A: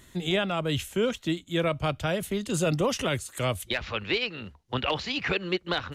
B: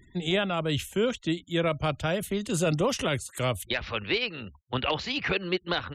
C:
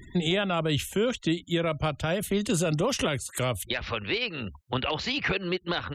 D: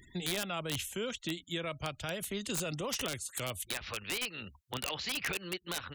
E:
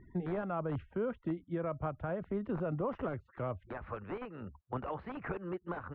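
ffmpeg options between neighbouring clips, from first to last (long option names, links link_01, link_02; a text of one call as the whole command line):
ffmpeg -i in.wav -af "afftfilt=real='re*gte(hypot(re,im),0.00316)':imag='im*gte(hypot(re,im),0.00316)':win_size=1024:overlap=0.75" out.wav
ffmpeg -i in.wav -af "alimiter=level_in=2dB:limit=-24dB:level=0:latency=1:release=409,volume=-2dB,volume=9dB" out.wav
ffmpeg -i in.wav -af "tiltshelf=frequency=1500:gain=-4.5,aeval=exprs='(mod(7.08*val(0)+1,2)-1)/7.08':channel_layout=same,volume=-8dB" out.wav
ffmpeg -i in.wav -af "lowpass=frequency=1300:width=0.5412,lowpass=frequency=1300:width=1.3066,volume=3dB" out.wav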